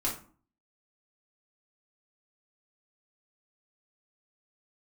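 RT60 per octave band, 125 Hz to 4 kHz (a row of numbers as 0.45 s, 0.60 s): 0.60 s, 0.60 s, 0.45 s, 0.45 s, 0.35 s, 0.25 s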